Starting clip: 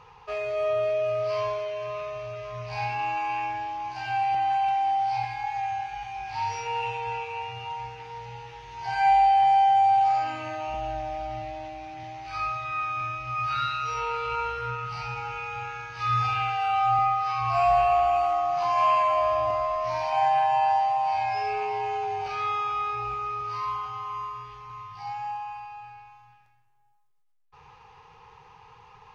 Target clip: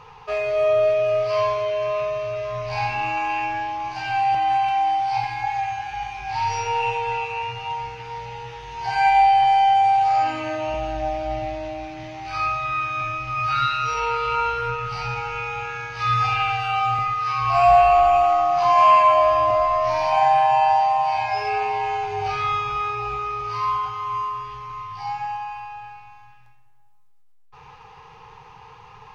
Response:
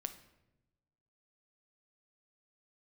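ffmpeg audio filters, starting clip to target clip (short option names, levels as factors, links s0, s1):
-filter_complex "[0:a]asettb=1/sr,asplit=3[s0][s1][s2];[s0]atrim=end=21.784[s3];[s1]atrim=start=21.78:end=22.76,asetpts=PTS-STARTPTS,afade=t=in:d=0.004:c=qsin,afade=t=out:st=0.976:d=0.004:c=qsin,asubboost=boost=7.5:cutoff=220[s4];[s2]atrim=start=22.756[s5];[s3][s4]acrossfade=d=0.004:c1=hsin:c2=qsin[s6];[s6][s5]acrossfade=d=0.004:c1=qsin:c2=hsin[s7];[1:a]atrim=start_sample=2205[s8];[s7][s8]afir=irnorm=-1:irlink=0,volume=2.66"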